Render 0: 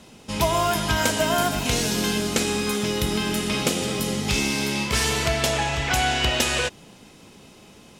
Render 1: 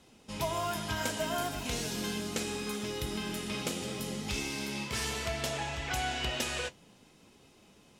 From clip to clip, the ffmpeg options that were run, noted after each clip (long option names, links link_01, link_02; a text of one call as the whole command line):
ffmpeg -i in.wav -af "flanger=delay=2.4:depth=8.3:regen=-61:speed=0.67:shape=sinusoidal,volume=-7.5dB" out.wav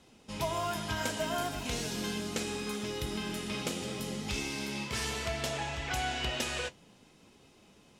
ffmpeg -i in.wav -af "highshelf=frequency=12000:gain=-6" out.wav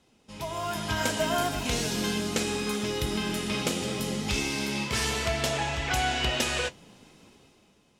ffmpeg -i in.wav -af "dynaudnorm=framelen=110:gausssize=13:maxgain=11dB,volume=-4.5dB" out.wav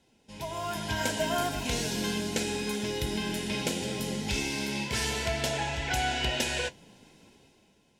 ffmpeg -i in.wav -af "asuperstop=centerf=1200:order=12:qfactor=4.9,volume=-2dB" out.wav